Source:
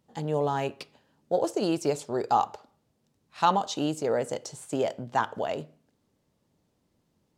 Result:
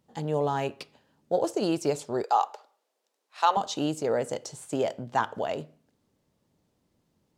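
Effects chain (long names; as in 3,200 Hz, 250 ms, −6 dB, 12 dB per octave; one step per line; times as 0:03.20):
0:02.23–0:03.57: high-pass filter 450 Hz 24 dB per octave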